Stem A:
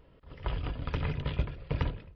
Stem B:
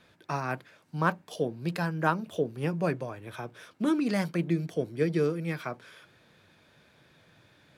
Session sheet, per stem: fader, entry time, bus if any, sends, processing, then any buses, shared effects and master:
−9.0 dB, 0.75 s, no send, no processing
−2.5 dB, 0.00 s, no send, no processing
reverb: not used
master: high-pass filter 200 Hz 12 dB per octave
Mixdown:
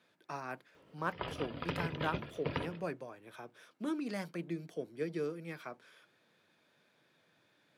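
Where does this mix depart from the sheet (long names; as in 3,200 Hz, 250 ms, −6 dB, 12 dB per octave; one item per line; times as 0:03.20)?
stem A −9.0 dB → 0.0 dB
stem B −2.5 dB → −9.5 dB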